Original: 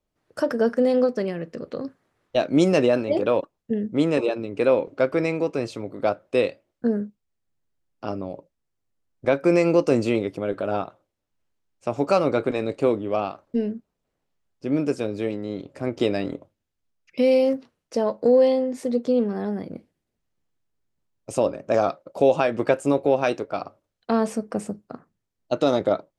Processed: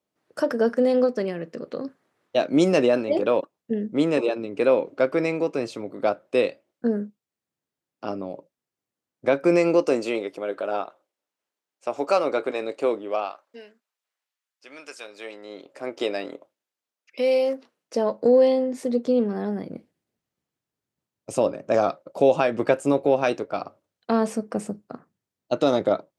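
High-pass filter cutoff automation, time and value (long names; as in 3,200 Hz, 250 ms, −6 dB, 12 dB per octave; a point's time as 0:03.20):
0:09.54 170 Hz
0:10.05 400 Hz
0:13.06 400 Hz
0:13.72 1,400 Hz
0:14.92 1,400 Hz
0:15.71 450 Hz
0:17.48 450 Hz
0:18.26 110 Hz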